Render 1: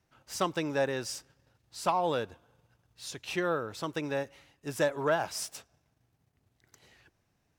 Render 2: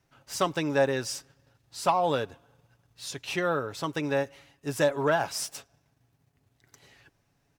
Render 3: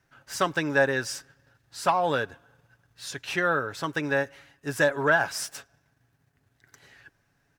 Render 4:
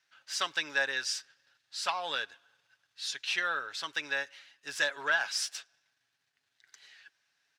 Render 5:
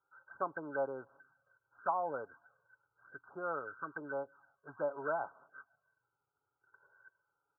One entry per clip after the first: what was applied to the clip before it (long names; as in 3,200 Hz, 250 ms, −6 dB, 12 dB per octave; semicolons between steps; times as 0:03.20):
comb filter 7.2 ms, depth 35%; level +3 dB
parametric band 1,600 Hz +10 dB 0.49 octaves
resonant band-pass 3,900 Hz, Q 1.3; level +4.5 dB
flanger swept by the level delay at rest 2.3 ms, full sweep at −30 dBFS; linear-phase brick-wall low-pass 1,600 Hz; level +4.5 dB